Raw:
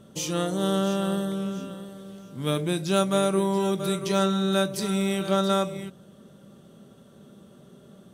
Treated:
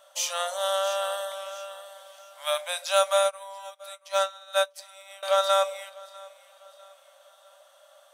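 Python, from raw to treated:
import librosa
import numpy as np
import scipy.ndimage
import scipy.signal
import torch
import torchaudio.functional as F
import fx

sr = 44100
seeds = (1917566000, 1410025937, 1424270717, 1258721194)

y = fx.brickwall_highpass(x, sr, low_hz=530.0)
y = fx.echo_feedback(y, sr, ms=648, feedback_pct=44, wet_db=-23)
y = fx.upward_expand(y, sr, threshold_db=-42.0, expansion=2.5, at=(3.23, 5.23))
y = F.gain(torch.from_numpy(y), 3.5).numpy()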